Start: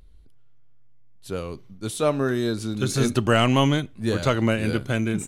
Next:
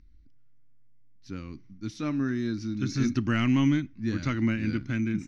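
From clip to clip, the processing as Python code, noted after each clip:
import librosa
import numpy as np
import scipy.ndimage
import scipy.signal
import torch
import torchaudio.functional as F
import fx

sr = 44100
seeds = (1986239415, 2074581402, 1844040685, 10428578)

y = fx.curve_eq(x, sr, hz=(170.0, 300.0, 430.0, 660.0, 2100.0, 3300.0, 5800.0, 8200.0), db=(0, 6, -15, -15, 2, -10, 2, -28))
y = y * librosa.db_to_amplitude(-5.0)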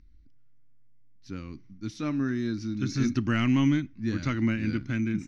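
y = x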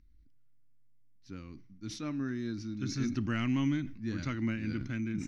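y = fx.sustainer(x, sr, db_per_s=77.0)
y = y * librosa.db_to_amplitude(-7.0)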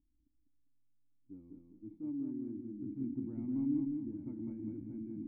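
y = fx.formant_cascade(x, sr, vowel='u')
y = fx.echo_feedback(y, sr, ms=200, feedback_pct=33, wet_db=-4)
y = y * librosa.db_to_amplitude(-1.5)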